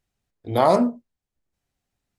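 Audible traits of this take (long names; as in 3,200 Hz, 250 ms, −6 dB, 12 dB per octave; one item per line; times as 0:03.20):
background noise floor −87 dBFS
spectral slope −4.5 dB per octave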